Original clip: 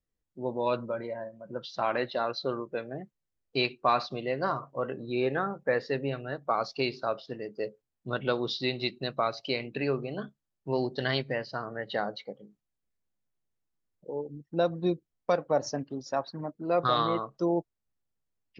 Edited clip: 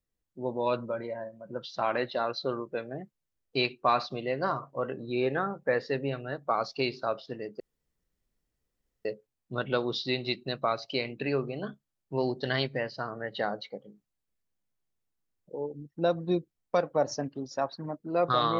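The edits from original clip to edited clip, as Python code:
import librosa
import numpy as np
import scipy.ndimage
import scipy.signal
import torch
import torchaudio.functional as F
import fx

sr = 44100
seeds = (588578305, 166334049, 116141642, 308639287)

y = fx.edit(x, sr, fx.insert_room_tone(at_s=7.6, length_s=1.45), tone=tone)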